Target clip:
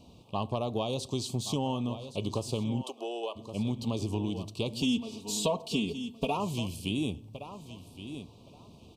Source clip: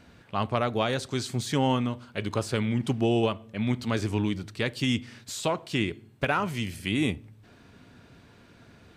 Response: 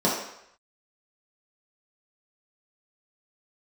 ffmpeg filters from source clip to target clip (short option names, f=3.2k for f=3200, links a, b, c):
-filter_complex "[0:a]asuperstop=centerf=1700:order=8:qfactor=1.1,aecho=1:1:1118|2236:0.178|0.0302,acompressor=threshold=-27dB:ratio=6,asplit=3[a][b][c];[a]afade=t=out:st=2.82:d=0.02[d];[b]highpass=f=420:w=0.5412,highpass=f=420:w=1.3066,afade=t=in:st=2.82:d=0.02,afade=t=out:st=3.35:d=0.02[e];[c]afade=t=in:st=3.35:d=0.02[f];[d][e][f]amix=inputs=3:normalize=0,asettb=1/sr,asplit=3[g][h][i];[g]atrim=end=4.824[j];[h]atrim=start=4.82:end=6.37,asetpts=PTS-STARTPTS,afade=t=in:d=0.004:c=qsin,afade=t=out:st=1.546:d=0.004:c=qsin,aecho=1:1:4.4:0.91,atrim=end_sample=68355[k];[i]atrim=start=6.366[l];[j][k]acrossfade=d=0.004:c1=hsin:c2=qsin[m];[m][l]acrossfade=d=0.004:c1=qsin:c2=hsin"